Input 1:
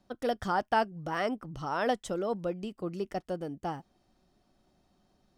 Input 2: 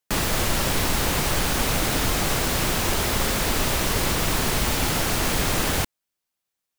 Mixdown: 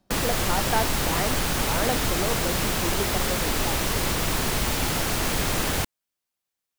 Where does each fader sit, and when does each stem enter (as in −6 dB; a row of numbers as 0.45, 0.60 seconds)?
+1.0, −2.0 decibels; 0.00, 0.00 seconds